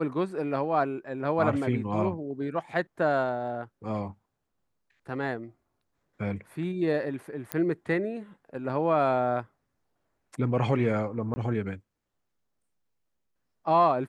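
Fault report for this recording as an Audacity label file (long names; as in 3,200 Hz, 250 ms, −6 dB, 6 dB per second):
7.520000	7.520000	click −13 dBFS
11.340000	11.360000	drop-out 20 ms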